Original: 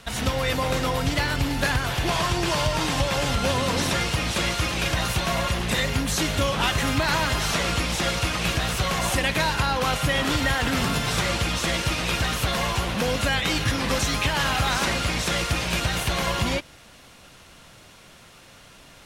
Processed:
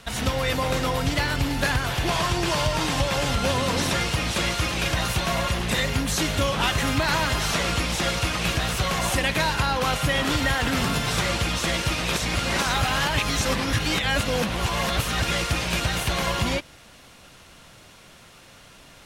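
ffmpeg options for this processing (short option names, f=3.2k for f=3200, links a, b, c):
-filter_complex "[0:a]asplit=3[a][b][c];[a]atrim=end=12.132[d];[b]atrim=start=12.128:end=15.312,asetpts=PTS-STARTPTS,areverse[e];[c]atrim=start=15.308[f];[d][e]acrossfade=d=0.004:c1=hsin:c2=hsin[g];[g][f]acrossfade=d=0.004:c1=hsin:c2=hsin"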